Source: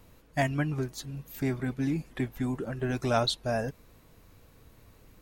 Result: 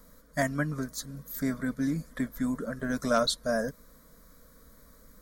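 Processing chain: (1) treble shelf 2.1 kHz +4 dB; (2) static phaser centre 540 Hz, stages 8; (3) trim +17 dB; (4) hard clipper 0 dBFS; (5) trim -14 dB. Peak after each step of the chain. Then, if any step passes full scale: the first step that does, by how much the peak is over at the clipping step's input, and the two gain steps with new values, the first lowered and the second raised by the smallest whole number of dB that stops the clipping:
-11.5 dBFS, -13.5 dBFS, +3.5 dBFS, 0.0 dBFS, -14.0 dBFS; step 3, 3.5 dB; step 3 +13 dB, step 5 -10 dB

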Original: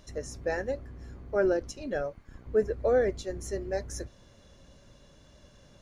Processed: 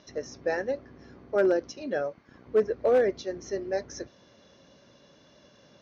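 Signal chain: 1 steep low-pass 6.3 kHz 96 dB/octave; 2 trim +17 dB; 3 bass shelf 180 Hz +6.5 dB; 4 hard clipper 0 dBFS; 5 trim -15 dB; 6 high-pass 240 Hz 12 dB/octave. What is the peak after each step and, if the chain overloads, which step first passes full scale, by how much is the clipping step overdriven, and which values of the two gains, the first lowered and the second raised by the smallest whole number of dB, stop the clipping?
-14.5 dBFS, +2.5 dBFS, +3.5 dBFS, 0.0 dBFS, -15.0 dBFS, -12.0 dBFS; step 2, 3.5 dB; step 2 +13 dB, step 5 -11 dB

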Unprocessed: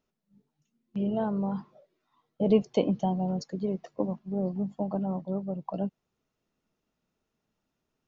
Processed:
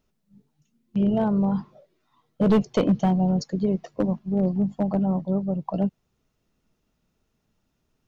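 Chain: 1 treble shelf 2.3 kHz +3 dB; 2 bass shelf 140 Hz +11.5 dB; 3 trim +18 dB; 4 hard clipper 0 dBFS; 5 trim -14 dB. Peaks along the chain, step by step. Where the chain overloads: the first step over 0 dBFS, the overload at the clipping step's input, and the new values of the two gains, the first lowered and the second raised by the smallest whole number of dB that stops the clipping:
-11.0 dBFS, -8.5 dBFS, +9.5 dBFS, 0.0 dBFS, -14.0 dBFS; step 3, 9.5 dB; step 3 +8 dB, step 5 -4 dB

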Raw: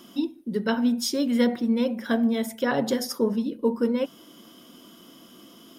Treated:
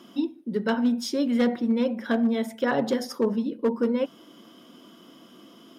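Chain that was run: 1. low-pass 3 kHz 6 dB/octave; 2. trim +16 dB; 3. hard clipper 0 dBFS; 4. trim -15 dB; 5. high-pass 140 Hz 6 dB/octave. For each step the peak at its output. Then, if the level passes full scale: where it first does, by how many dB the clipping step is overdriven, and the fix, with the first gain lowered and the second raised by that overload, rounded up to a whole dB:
-10.5 dBFS, +5.5 dBFS, 0.0 dBFS, -15.0 dBFS, -12.5 dBFS; step 2, 5.5 dB; step 2 +10 dB, step 4 -9 dB

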